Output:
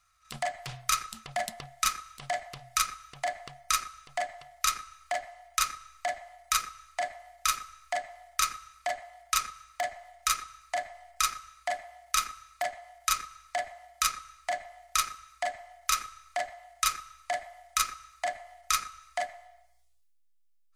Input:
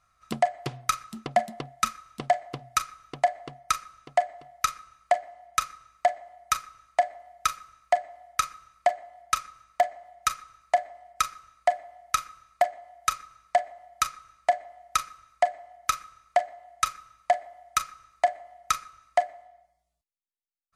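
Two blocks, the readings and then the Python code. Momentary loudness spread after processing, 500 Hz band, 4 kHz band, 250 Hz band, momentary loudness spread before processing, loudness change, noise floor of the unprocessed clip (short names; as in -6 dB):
9 LU, -9.0 dB, +3.5 dB, n/a, 11 LU, -3.0 dB, -71 dBFS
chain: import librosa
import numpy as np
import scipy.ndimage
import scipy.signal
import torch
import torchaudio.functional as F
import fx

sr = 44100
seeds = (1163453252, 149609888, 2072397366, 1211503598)

p1 = fx.tone_stack(x, sr, knobs='10-0-10')
p2 = fx.transient(p1, sr, attack_db=-8, sustain_db=6)
p3 = fx.backlash(p2, sr, play_db=-37.5)
p4 = p2 + (p3 * librosa.db_to_amplitude(-5.0))
y = p4 * librosa.db_to_amplitude(5.0)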